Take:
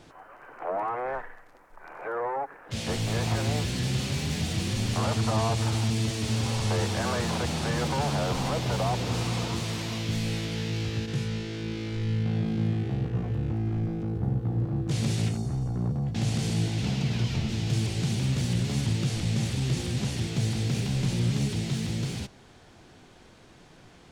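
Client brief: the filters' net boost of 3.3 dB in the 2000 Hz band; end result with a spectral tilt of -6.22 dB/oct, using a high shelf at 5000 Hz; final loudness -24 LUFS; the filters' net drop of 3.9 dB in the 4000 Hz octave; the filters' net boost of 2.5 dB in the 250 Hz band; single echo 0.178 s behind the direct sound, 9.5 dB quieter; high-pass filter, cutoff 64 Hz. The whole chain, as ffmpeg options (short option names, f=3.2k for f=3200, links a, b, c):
-af "highpass=64,equalizer=f=250:t=o:g=3.5,equalizer=f=2k:t=o:g=6.5,equalizer=f=4k:t=o:g=-4,highshelf=f=5k:g=-7.5,aecho=1:1:178:0.335,volume=3.5dB"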